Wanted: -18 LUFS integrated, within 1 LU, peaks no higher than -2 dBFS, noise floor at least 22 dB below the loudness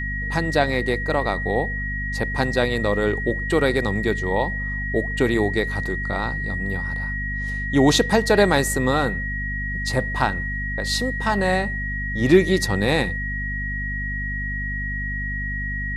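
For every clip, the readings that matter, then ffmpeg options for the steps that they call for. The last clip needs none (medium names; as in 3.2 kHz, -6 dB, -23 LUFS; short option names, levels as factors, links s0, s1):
hum 50 Hz; highest harmonic 250 Hz; hum level -26 dBFS; steady tone 1.9 kHz; tone level -27 dBFS; loudness -22.5 LUFS; peak level -3.5 dBFS; loudness target -18.0 LUFS
-> -af "bandreject=f=50:t=h:w=4,bandreject=f=100:t=h:w=4,bandreject=f=150:t=h:w=4,bandreject=f=200:t=h:w=4,bandreject=f=250:t=h:w=4"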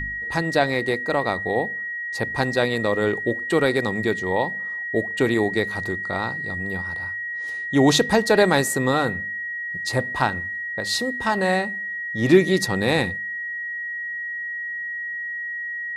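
hum not found; steady tone 1.9 kHz; tone level -27 dBFS
-> -af "bandreject=f=1900:w=30"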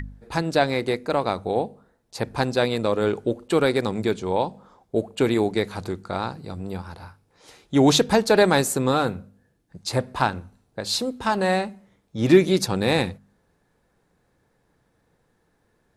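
steady tone not found; loudness -23.0 LUFS; peak level -4.5 dBFS; loudness target -18.0 LUFS
-> -af "volume=1.78,alimiter=limit=0.794:level=0:latency=1"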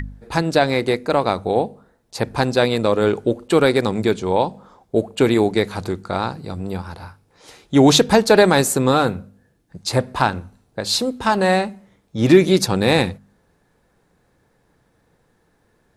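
loudness -18.5 LUFS; peak level -2.0 dBFS; noise floor -63 dBFS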